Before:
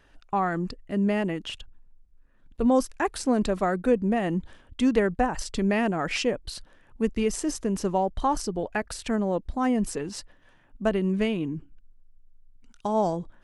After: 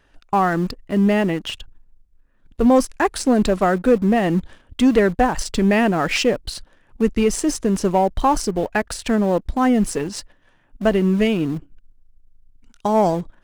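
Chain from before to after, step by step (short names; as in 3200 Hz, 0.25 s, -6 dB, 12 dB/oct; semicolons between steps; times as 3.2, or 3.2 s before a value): sample leveller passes 1; in parallel at -12 dB: sample gate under -26 dBFS; on the sum: gain +2.5 dB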